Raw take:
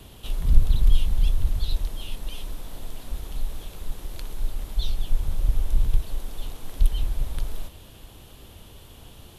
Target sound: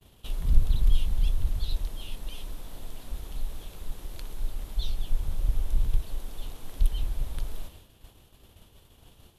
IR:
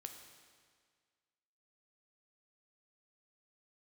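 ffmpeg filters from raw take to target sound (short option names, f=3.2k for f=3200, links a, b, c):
-af "agate=range=-33dB:threshold=-39dB:ratio=3:detection=peak,volume=-4dB"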